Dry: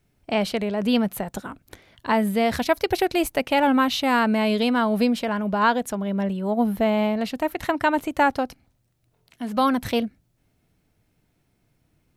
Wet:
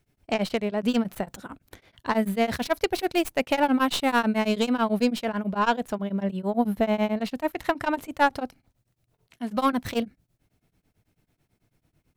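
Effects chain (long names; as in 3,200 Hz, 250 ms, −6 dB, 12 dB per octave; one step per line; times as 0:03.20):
stylus tracing distortion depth 0.085 ms
tremolo along a rectified sine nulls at 9.1 Hz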